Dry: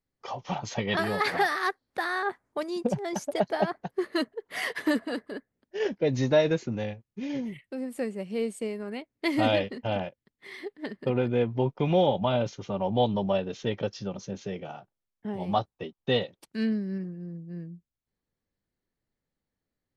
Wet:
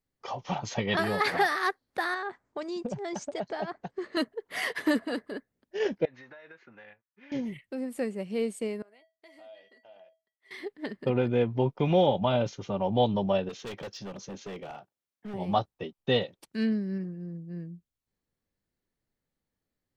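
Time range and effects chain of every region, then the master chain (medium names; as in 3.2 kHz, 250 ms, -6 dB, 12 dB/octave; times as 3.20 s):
2.14–4.17 s: steep low-pass 8.3 kHz 72 dB/octave + compression 2.5:1, threshold -32 dBFS
6.05–7.32 s: band-pass filter 1.6 kHz, Q 2.4 + distance through air 120 m + compression 16:1, threshold -45 dBFS
8.82–10.51 s: high-pass 450 Hz + feedback comb 650 Hz, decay 0.25 s, harmonics odd, mix 90% + compression 2.5:1, threshold -54 dBFS
13.49–15.34 s: high-pass 200 Hz 6 dB/octave + hard clipper -35.5 dBFS
whole clip: none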